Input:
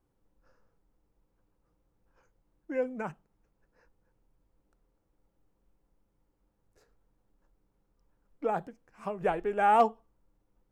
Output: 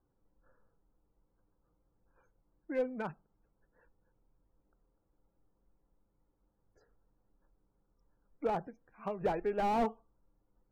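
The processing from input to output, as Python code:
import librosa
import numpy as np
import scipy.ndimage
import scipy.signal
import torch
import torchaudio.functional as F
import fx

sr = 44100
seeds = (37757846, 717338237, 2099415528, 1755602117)

y = fx.spec_topn(x, sr, count=64)
y = fx.slew_limit(y, sr, full_power_hz=33.0)
y = F.gain(torch.from_numpy(y), -2.0).numpy()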